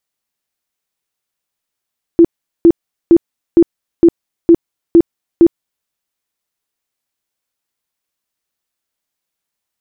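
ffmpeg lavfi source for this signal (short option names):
-f lavfi -i "aevalsrc='0.794*sin(2*PI*337*mod(t,0.46))*lt(mod(t,0.46),19/337)':d=3.68:s=44100"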